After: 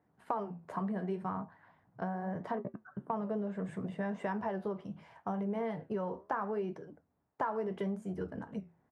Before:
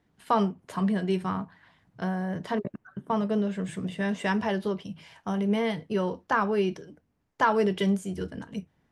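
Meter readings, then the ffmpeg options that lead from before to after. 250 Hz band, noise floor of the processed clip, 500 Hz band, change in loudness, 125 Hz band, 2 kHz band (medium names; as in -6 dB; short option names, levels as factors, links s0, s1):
-10.0 dB, -75 dBFS, -8.5 dB, -9.5 dB, -9.0 dB, -13.0 dB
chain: -af "highpass=74,flanger=delay=6.4:depth=8.6:regen=-74:speed=0.74:shape=sinusoidal,firequalizer=gain_entry='entry(290,0);entry(740,6);entry(3100,-13)':delay=0.05:min_phase=1,acompressor=threshold=0.0224:ratio=4"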